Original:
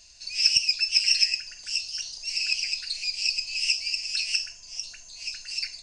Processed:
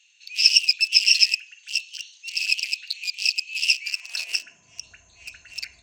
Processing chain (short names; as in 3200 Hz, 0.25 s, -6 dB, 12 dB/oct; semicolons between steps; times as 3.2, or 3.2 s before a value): Wiener smoothing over 9 samples; high-pass sweep 3000 Hz -> 66 Hz, 3.71–4.88; gain +2.5 dB